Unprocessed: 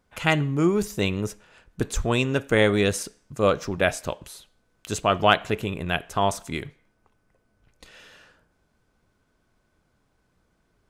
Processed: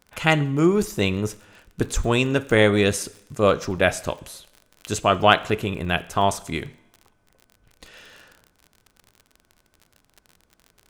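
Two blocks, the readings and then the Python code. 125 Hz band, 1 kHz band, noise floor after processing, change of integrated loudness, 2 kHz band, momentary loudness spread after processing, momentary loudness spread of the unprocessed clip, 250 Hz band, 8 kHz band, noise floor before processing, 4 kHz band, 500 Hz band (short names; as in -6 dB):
+2.5 dB, +2.5 dB, -66 dBFS, +2.5 dB, +2.5 dB, 13 LU, 13 LU, +2.5 dB, +2.5 dB, -70 dBFS, +2.5 dB, +2.5 dB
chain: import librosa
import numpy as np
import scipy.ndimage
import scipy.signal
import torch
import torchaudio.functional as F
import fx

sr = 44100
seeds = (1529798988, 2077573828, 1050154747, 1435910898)

y = fx.rev_double_slope(x, sr, seeds[0], early_s=0.76, late_s=2.8, knee_db=-26, drr_db=17.5)
y = fx.dmg_crackle(y, sr, seeds[1], per_s=40.0, level_db=-37.0)
y = F.gain(torch.from_numpy(y), 2.5).numpy()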